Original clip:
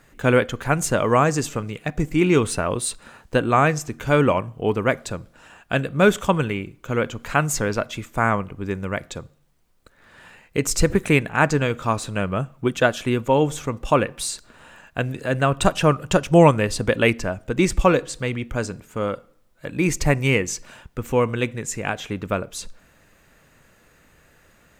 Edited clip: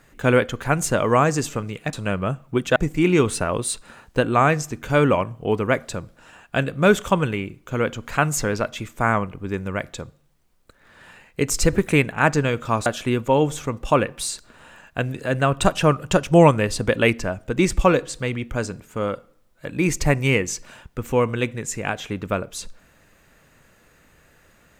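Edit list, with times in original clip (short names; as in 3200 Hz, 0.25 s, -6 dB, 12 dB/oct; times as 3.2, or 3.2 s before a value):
12.03–12.86 move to 1.93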